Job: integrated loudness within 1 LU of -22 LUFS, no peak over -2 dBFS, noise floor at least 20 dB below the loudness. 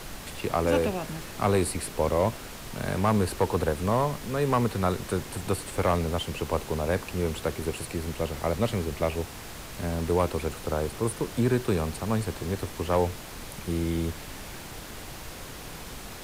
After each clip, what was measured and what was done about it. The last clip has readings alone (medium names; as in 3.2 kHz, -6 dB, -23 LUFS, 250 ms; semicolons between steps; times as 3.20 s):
clipped samples 0.3%; clipping level -15.0 dBFS; noise floor -41 dBFS; noise floor target -49 dBFS; loudness -28.5 LUFS; peak level -15.0 dBFS; loudness target -22.0 LUFS
-> clip repair -15 dBFS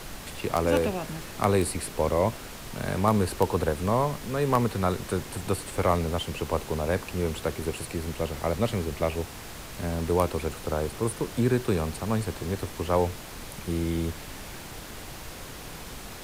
clipped samples 0.0%; noise floor -41 dBFS; noise floor target -48 dBFS
-> noise print and reduce 7 dB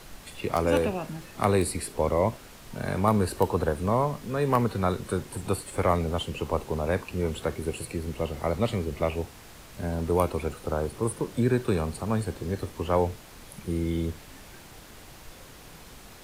noise floor -48 dBFS; noise floor target -49 dBFS
-> noise print and reduce 6 dB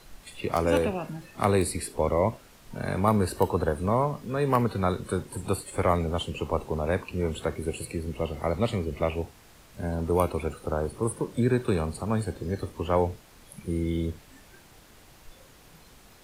noise floor -54 dBFS; loudness -28.5 LUFS; peak level -6.0 dBFS; loudness target -22.0 LUFS
-> trim +6.5 dB; peak limiter -2 dBFS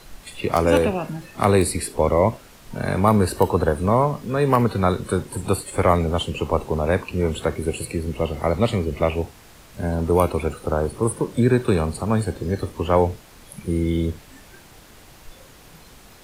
loudness -22.0 LUFS; peak level -2.0 dBFS; noise floor -47 dBFS